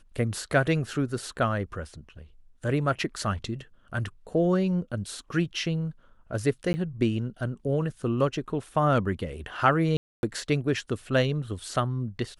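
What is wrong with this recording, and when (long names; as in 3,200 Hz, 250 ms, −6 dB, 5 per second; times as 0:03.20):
0:06.73–0:06.74: drop-out 10 ms
0:09.97–0:10.23: drop-out 261 ms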